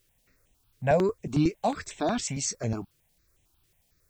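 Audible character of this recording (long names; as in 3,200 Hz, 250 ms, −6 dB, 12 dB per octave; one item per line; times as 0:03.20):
a quantiser's noise floor 12 bits, dither triangular
notches that jump at a steady rate 11 Hz 220–4,700 Hz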